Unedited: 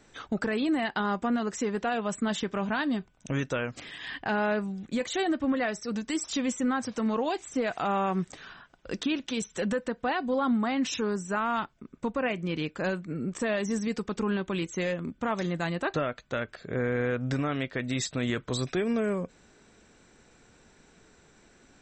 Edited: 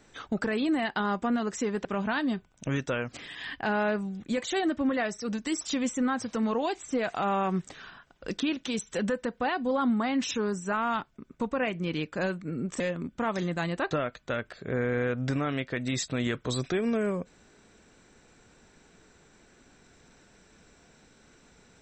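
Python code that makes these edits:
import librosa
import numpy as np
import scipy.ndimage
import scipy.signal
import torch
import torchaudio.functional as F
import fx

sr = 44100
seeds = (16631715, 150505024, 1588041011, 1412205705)

y = fx.edit(x, sr, fx.cut(start_s=1.85, length_s=0.63),
    fx.cut(start_s=13.43, length_s=1.4), tone=tone)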